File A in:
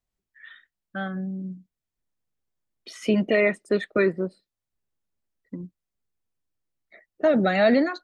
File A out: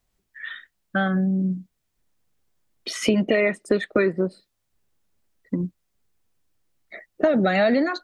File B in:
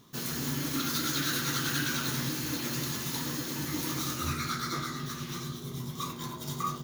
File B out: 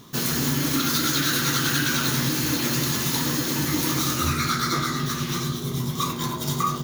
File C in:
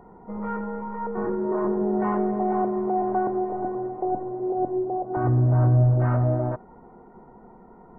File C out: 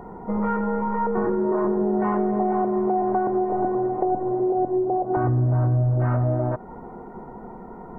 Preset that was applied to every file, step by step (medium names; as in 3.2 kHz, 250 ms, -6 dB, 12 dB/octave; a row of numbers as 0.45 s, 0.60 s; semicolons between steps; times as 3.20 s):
compression 4:1, threshold -30 dBFS; normalise loudness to -23 LUFS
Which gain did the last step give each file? +11.5 dB, +11.0 dB, +9.5 dB